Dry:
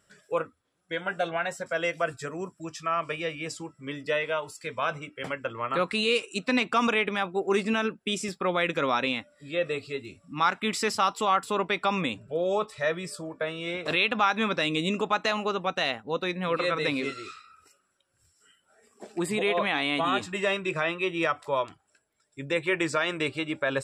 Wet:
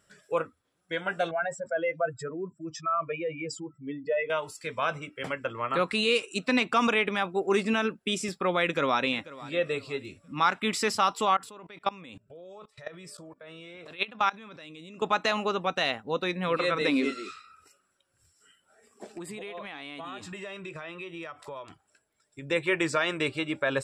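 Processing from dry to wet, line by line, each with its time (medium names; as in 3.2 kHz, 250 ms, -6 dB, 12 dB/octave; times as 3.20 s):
1.31–4.30 s: spectral contrast enhancement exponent 2.1
8.63–9.11 s: echo throw 490 ms, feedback 30%, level -18 dB
11.34–15.02 s: level held to a coarse grid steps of 23 dB
16.81–17.30 s: resonant low shelf 150 Hz -13 dB, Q 3
19.05–22.51 s: compression, threshold -37 dBFS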